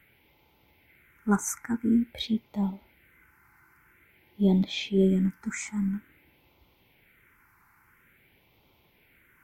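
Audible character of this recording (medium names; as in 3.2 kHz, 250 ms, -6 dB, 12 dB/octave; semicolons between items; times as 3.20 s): phasing stages 4, 0.49 Hz, lowest notch 540–1600 Hz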